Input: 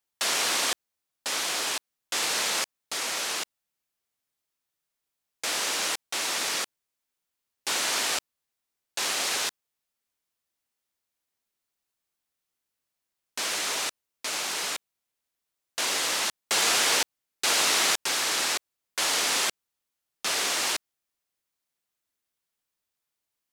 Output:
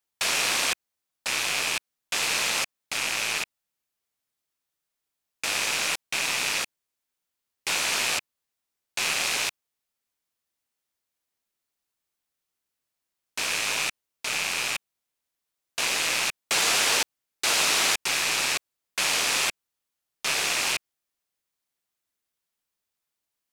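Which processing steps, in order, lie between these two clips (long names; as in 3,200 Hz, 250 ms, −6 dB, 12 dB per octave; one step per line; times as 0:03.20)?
loose part that buzzes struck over −58 dBFS, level −16 dBFS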